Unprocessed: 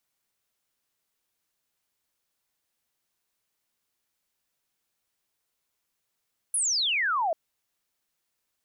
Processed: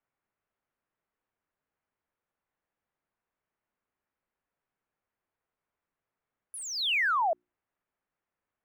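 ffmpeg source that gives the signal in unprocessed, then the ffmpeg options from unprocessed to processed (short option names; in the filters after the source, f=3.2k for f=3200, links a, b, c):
-f lavfi -i "aevalsrc='0.0708*clip(t/0.002,0,1)*clip((0.79-t)/0.002,0,1)*sin(2*PI*11000*0.79/log(620/11000)*(exp(log(620/11000)*t/0.79)-1))':d=0.79:s=44100"
-filter_complex "[0:a]acrossover=split=3700[a][b];[b]acompressor=threshold=-40dB:ratio=4:attack=1:release=60[c];[a][c]amix=inputs=2:normalize=0,bandreject=f=60:t=h:w=6,bandreject=f=120:t=h:w=6,bandreject=f=180:t=h:w=6,bandreject=f=240:t=h:w=6,bandreject=f=300:t=h:w=6,bandreject=f=360:t=h:w=6,acrossover=split=510|2200[d][e][f];[f]aeval=exprs='sgn(val(0))*max(abs(val(0))-0.00224,0)':c=same[g];[d][e][g]amix=inputs=3:normalize=0"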